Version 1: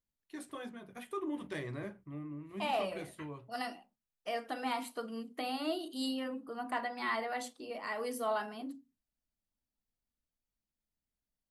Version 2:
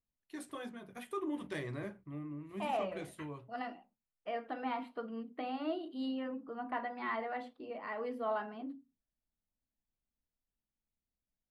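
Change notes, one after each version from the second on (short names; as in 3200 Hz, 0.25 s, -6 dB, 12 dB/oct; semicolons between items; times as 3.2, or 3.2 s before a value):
second voice: add air absorption 430 m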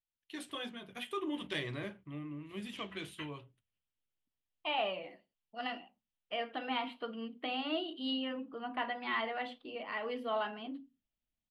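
second voice: entry +2.05 s; master: add bell 3100 Hz +14.5 dB 0.86 oct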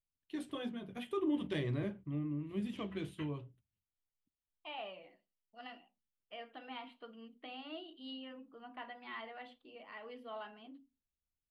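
first voice: add tilt shelf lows +7.5 dB, about 640 Hz; second voice -11.0 dB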